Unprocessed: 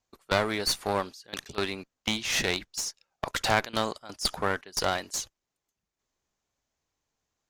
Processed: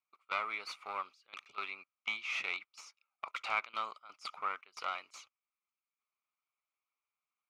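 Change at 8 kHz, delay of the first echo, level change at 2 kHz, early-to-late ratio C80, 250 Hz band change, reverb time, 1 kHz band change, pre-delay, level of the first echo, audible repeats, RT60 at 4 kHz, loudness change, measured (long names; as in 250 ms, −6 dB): −23.5 dB, no echo audible, −7.0 dB, no reverb audible, −27.5 dB, no reverb audible, −7.5 dB, no reverb audible, no echo audible, no echo audible, no reverb audible, −9.5 dB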